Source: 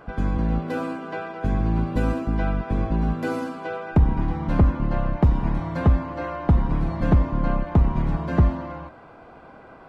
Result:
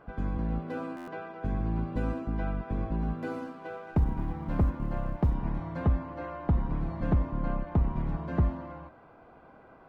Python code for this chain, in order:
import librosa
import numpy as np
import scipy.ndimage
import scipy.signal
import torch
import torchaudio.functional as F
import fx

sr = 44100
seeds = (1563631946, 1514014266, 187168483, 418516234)

y = fx.law_mismatch(x, sr, coded='A', at=(3.25, 5.34))
y = fx.high_shelf(y, sr, hz=3800.0, db=-9.5)
y = fx.buffer_glitch(y, sr, at_s=(0.96,), block=512, repeats=9)
y = F.gain(torch.from_numpy(y), -8.0).numpy()